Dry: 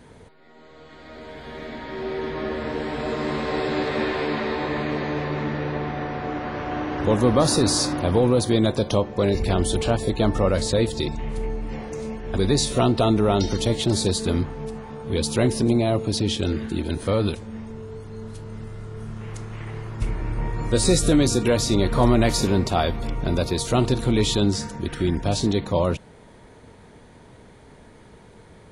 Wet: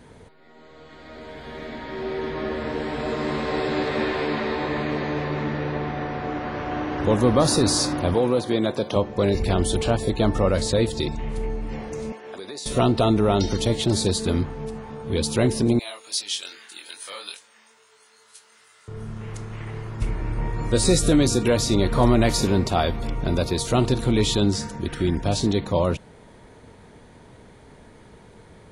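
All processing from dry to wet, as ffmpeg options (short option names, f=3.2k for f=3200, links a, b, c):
-filter_complex "[0:a]asettb=1/sr,asplit=3[a][b][c];[a]atrim=end=8.144[d];[b]atrim=start=8.14:end=8.96,asetpts=PTS-STARTPTS,afade=t=in:d=0.004:c=qsin,afade=t=out:st=0.816:d=0.004:c=qsin,highpass=110,acrossover=split=3500[e][f];[f]acompressor=threshold=-41dB:ratio=4:attack=1:release=60[g];[e][g]amix=inputs=2:normalize=0,lowshelf=f=200:g=-8[h];[c]atrim=start=8.956[i];[d][h]acrossfade=d=0.004:c1=hsin:c2=qsin[j];[j][i]acrossfade=d=0.004:c1=qsin:c2=hsin,asettb=1/sr,asplit=3[k][l][m];[k]atrim=end=12.124[n];[l]atrim=start=12.12:end=12.66,asetpts=PTS-STARTPTS,afade=t=in:d=0.004:c=qsin,afade=t=out:st=0.536:d=0.004:c=qsin,highpass=450,acompressor=threshold=-33dB:ratio=5:attack=3.2:release=140:knee=1:detection=peak[o];[m]atrim=start=12.656[p];[n][o]acrossfade=d=0.004:c1=hsin:c2=qsin[q];[q][p]acrossfade=d=0.004:c1=qsin:c2=hsin,asettb=1/sr,asplit=3[r][s][t];[r]atrim=end=15.794[u];[s]atrim=start=15.79:end=18.88,asetpts=PTS-STARTPTS,afade=t=in:d=0.004:c=qsin,afade=t=out:st=3.086:d=0.004:c=qsin,highpass=1.4k,flanger=delay=19.5:depth=3.7:speed=2.4,highshelf=f=4.9k:g=10.5[v];[t]atrim=start=18.876[w];[u][v]acrossfade=d=0.004:c1=hsin:c2=qsin[x];[x][w]acrossfade=d=0.004:c1=qsin:c2=hsin"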